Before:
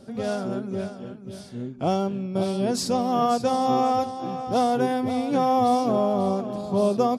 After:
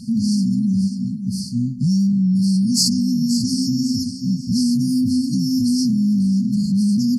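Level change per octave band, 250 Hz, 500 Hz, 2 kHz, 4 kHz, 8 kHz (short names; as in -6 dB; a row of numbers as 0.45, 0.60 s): +10.0 dB, under -30 dB, under -40 dB, +11.0 dB, +12.5 dB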